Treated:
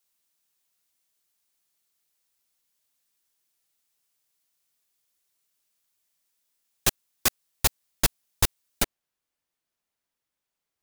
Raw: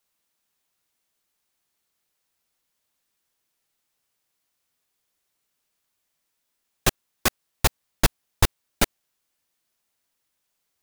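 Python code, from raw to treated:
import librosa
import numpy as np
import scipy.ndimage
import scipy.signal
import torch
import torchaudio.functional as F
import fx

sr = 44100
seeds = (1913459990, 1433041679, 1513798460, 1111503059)

y = fx.high_shelf(x, sr, hz=3200.0, db=fx.steps((0.0, 8.5), (8.82, -5.0)))
y = y * 10.0 ** (-6.0 / 20.0)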